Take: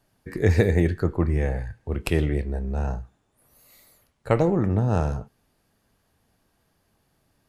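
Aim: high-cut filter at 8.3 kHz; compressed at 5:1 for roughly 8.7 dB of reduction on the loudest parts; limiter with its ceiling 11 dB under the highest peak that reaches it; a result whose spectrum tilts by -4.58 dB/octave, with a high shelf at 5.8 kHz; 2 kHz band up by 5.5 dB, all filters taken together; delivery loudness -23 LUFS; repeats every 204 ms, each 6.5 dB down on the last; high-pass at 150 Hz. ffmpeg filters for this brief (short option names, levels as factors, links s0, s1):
-af "highpass=150,lowpass=8300,equalizer=f=2000:t=o:g=7,highshelf=f=5800:g=-5,acompressor=threshold=0.0562:ratio=5,alimiter=limit=0.106:level=0:latency=1,aecho=1:1:204|408|612|816|1020|1224:0.473|0.222|0.105|0.0491|0.0231|0.0109,volume=2.99"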